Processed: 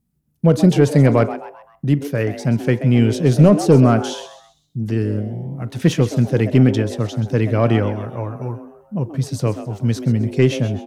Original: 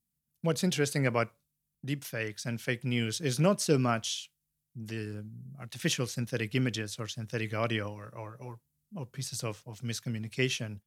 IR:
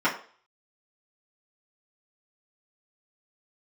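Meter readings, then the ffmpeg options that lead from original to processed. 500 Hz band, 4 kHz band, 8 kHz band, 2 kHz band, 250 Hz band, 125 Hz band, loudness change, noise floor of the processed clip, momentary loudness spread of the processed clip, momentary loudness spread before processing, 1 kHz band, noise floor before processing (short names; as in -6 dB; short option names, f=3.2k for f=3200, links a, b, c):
+15.0 dB, +3.5 dB, +2.0 dB, +5.5 dB, +17.0 dB, +17.5 dB, +14.5 dB, -64 dBFS, 15 LU, 17 LU, +11.5 dB, -84 dBFS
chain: -filter_complex "[0:a]aeval=exprs='0.266*(cos(1*acos(clip(val(0)/0.266,-1,1)))-cos(1*PI/2))+0.0376*(cos(5*acos(clip(val(0)/0.266,-1,1)))-cos(5*PI/2))':c=same,tiltshelf=f=1.2k:g=8.5,asplit=5[a][b][c][d][e];[b]adelay=130,afreqshift=140,volume=-13dB[f];[c]adelay=260,afreqshift=280,volume=-21.2dB[g];[d]adelay=390,afreqshift=420,volume=-29.4dB[h];[e]adelay=520,afreqshift=560,volume=-37.5dB[i];[a][f][g][h][i]amix=inputs=5:normalize=0,asplit=2[j][k];[1:a]atrim=start_sample=2205,adelay=31[l];[k][l]afir=irnorm=-1:irlink=0,volume=-33.5dB[m];[j][m]amix=inputs=2:normalize=0,volume=5.5dB"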